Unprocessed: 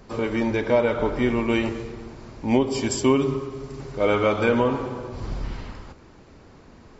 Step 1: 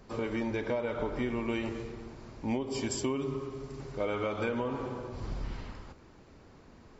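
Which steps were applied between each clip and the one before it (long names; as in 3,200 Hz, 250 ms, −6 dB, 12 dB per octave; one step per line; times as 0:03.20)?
downward compressor 6 to 1, threshold −22 dBFS, peak gain reduction 8.5 dB
level −6.5 dB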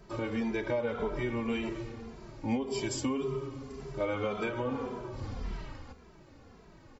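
barber-pole flanger 2.6 ms −1.8 Hz
level +3 dB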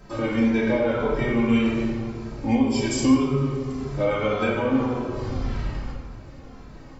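convolution reverb RT60 1.3 s, pre-delay 4 ms, DRR −2.5 dB
level +5 dB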